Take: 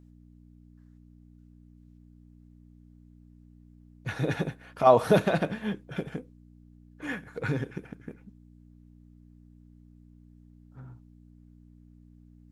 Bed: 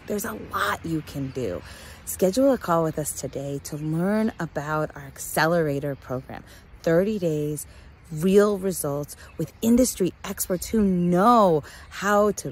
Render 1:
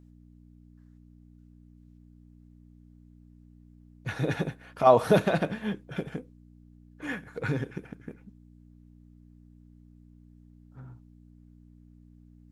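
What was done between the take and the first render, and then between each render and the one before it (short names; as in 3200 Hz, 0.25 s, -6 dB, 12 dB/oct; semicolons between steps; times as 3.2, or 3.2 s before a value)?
nothing audible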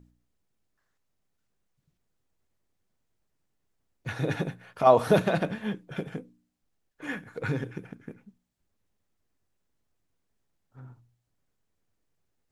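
de-hum 60 Hz, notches 5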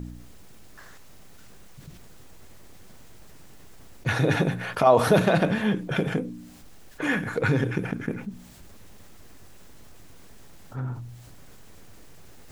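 fast leveller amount 50%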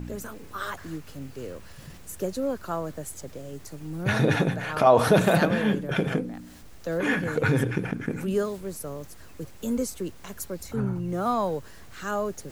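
add bed -9 dB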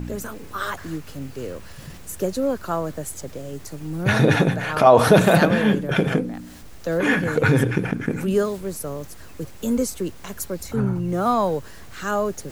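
gain +5.5 dB; limiter -2 dBFS, peak gain reduction 1.5 dB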